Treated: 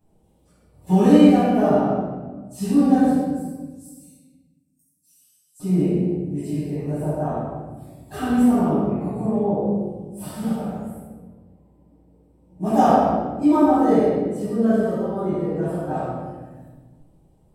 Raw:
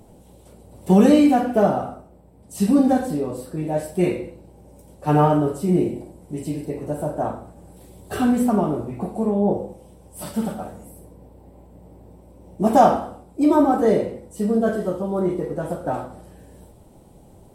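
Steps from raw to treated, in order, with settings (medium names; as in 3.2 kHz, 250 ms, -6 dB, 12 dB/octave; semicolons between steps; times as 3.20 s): spectral noise reduction 12 dB; 3.14–5.60 s: inverse Chebyshev high-pass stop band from 1.1 kHz, stop band 80 dB; simulated room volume 1000 m³, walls mixed, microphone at 8.7 m; trim -14.5 dB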